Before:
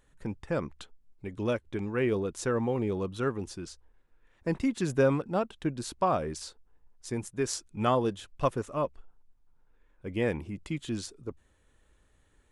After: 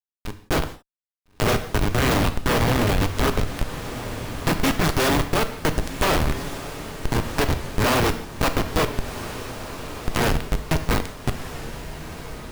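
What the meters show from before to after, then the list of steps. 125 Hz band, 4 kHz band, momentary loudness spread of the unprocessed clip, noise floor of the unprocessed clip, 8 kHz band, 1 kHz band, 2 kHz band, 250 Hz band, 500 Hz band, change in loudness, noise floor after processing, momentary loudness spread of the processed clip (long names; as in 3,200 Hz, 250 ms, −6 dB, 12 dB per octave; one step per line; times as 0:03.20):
+10.5 dB, +16.0 dB, 15 LU, −67 dBFS, +10.5 dB, +9.0 dB, +14.0 dB, +6.5 dB, +4.5 dB, +7.5 dB, −81 dBFS, 13 LU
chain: compressing power law on the bin magnitudes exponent 0.28
high-pass filter 150 Hz 24 dB per octave
parametric band 200 Hz −4.5 dB 0.36 octaves
hum removal 376.7 Hz, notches 4
comparator with hysteresis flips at −26 dBFS
automatic gain control gain up to 12 dB
feedback delay with all-pass diffusion 1,363 ms, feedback 44%, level −13.5 dB
reverb whose tail is shaped and stops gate 200 ms falling, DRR 8.5 dB
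dynamic equaliser 8,100 Hz, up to −4 dB, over −39 dBFS, Q 0.84
downward compressor, threshold −21 dBFS, peak gain reduction 3.5 dB
wow of a warped record 45 rpm, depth 100 cents
level +4.5 dB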